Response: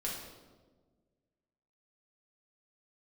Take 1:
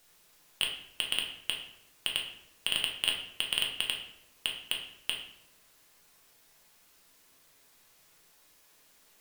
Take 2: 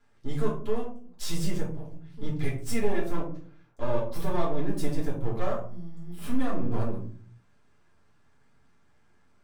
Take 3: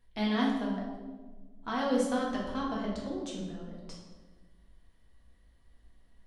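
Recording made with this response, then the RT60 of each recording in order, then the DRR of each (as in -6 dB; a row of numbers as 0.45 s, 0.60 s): 3; 0.80 s, 0.45 s, 1.4 s; -1.0 dB, -4.0 dB, -4.5 dB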